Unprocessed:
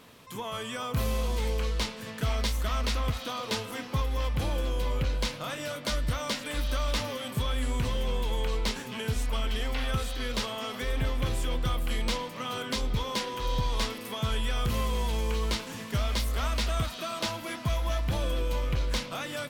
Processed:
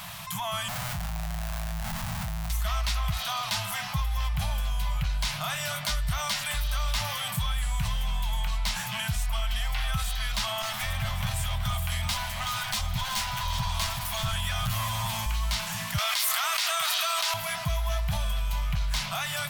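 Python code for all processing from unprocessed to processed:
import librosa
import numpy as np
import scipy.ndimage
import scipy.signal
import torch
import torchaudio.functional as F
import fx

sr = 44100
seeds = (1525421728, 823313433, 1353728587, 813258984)

y = fx.chain(x, sr, fx.ladder_lowpass(hz=570.0, resonance_pct=30),
    fx.schmitt(flips_db=-49.5),
    fx.doubler(ms=24.0, db=-10.5), at=(0.68, 2.5))
y = fx.chain(y, sr, fx.lower_of_two(delay_ms=8.9),
    fx.echo_single(ms=377, db=-11.0), at=(10.62, 15.26))
y = fx.chain(y, sr, fx.highpass(hz=1000.0, slope=12),
    fx.env_flatten(amount_pct=100), at=(15.98, 17.34))
y = scipy.signal.sosfilt(scipy.signal.ellip(3, 1.0, 40, [180.0, 680.0], 'bandstop', fs=sr, output='sos'), y)
y = fx.high_shelf(y, sr, hz=11000.0, db=9.0)
y = fx.env_flatten(y, sr, amount_pct=50)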